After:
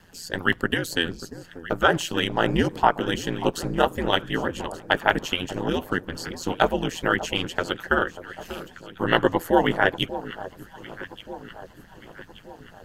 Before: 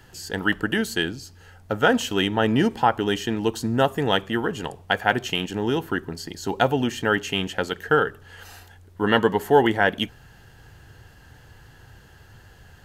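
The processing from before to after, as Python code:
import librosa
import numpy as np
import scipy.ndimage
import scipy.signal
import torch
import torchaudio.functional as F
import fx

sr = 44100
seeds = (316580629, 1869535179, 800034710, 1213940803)

y = x * np.sin(2.0 * np.pi * 85.0 * np.arange(len(x)) / sr)
y = fx.echo_alternate(y, sr, ms=589, hz=1200.0, feedback_pct=69, wet_db=-12.5)
y = fx.hpss(y, sr, part='percussive', gain_db=9)
y = y * 10.0 ** (-5.5 / 20.0)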